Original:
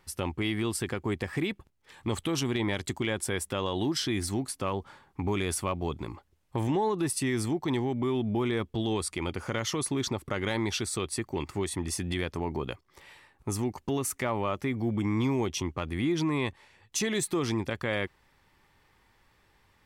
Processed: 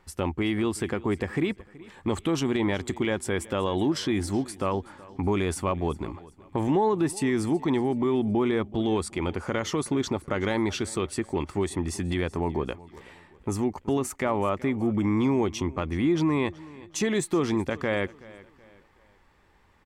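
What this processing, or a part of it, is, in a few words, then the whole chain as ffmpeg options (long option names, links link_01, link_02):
through cloth: -af "equalizer=frequency=120:width_type=o:width=0.35:gain=-8,highshelf=frequency=3000:gain=-12,equalizer=frequency=7400:width_type=o:width=0.51:gain=5,aecho=1:1:375|750|1125:0.0944|0.0359|0.0136,volume=5dB"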